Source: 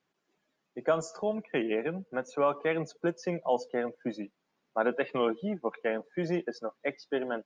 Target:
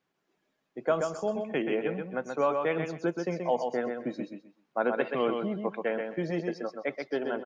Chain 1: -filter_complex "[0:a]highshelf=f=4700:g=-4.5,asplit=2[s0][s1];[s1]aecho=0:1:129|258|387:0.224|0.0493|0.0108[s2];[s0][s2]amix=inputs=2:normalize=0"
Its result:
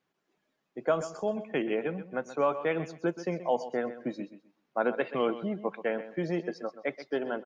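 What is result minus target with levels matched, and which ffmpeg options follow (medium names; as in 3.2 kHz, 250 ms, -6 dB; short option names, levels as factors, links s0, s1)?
echo-to-direct -8 dB
-filter_complex "[0:a]highshelf=f=4700:g=-4.5,asplit=2[s0][s1];[s1]aecho=0:1:129|258|387:0.562|0.124|0.0272[s2];[s0][s2]amix=inputs=2:normalize=0"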